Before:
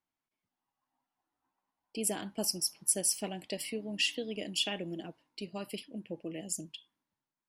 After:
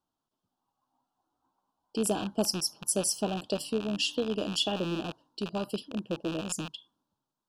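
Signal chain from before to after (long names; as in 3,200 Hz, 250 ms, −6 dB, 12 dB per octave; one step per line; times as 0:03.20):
loose part that buzzes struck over −54 dBFS, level −26 dBFS
Butterworth band-reject 2,100 Hz, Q 1.2
high-shelf EQ 6,700 Hz −12 dB
level +7.5 dB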